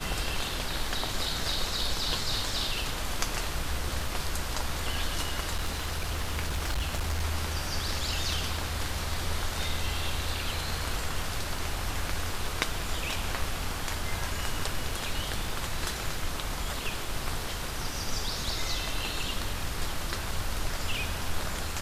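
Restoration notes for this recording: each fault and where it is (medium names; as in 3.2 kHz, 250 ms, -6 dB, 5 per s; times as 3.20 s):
5.55–7.25 s: clipped -25 dBFS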